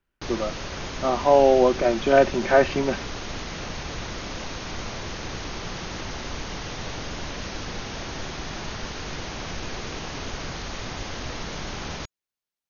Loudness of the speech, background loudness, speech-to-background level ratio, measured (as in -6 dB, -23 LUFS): -20.5 LUFS, -33.5 LUFS, 13.0 dB